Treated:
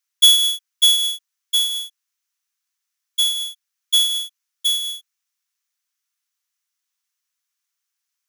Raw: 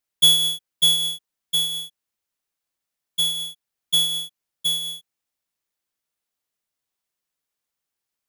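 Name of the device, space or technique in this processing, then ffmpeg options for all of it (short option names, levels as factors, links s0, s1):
headphones lying on a table: -af "highpass=f=1100:w=0.5412,highpass=f=1100:w=1.3066,equalizer=f=6000:t=o:w=0.38:g=6,volume=1.41"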